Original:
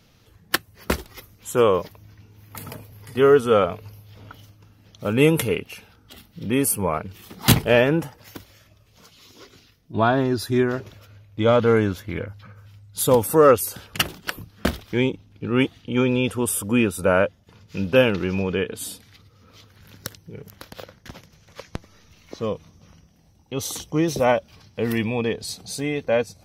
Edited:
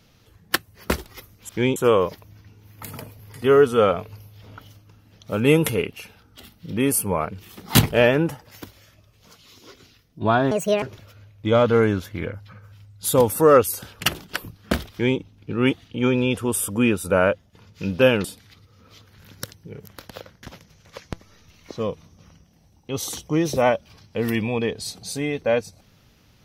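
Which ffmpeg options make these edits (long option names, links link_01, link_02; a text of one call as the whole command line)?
ffmpeg -i in.wav -filter_complex "[0:a]asplit=6[link_01][link_02][link_03][link_04][link_05][link_06];[link_01]atrim=end=1.492[link_07];[link_02]atrim=start=14.848:end=15.122[link_08];[link_03]atrim=start=1.488:end=10.244[link_09];[link_04]atrim=start=10.24:end=10.76,asetpts=PTS-STARTPTS,asetrate=73206,aresample=44100,atrim=end_sample=13814,asetpts=PTS-STARTPTS[link_10];[link_05]atrim=start=10.756:end=18.182[link_11];[link_06]atrim=start=18.868[link_12];[link_07][link_08]acrossfade=duration=0.004:curve1=hsin:curve2=hsin[link_13];[link_13][link_09]acrossfade=duration=0.004:curve1=hsin:curve2=hsin[link_14];[link_14][link_10]acrossfade=duration=0.004:curve1=hsin:curve2=hsin[link_15];[link_15][link_11]acrossfade=duration=0.004:curve1=hsin:curve2=hsin[link_16];[link_16][link_12]acrossfade=duration=0.004:curve1=hsin:curve2=hsin" out.wav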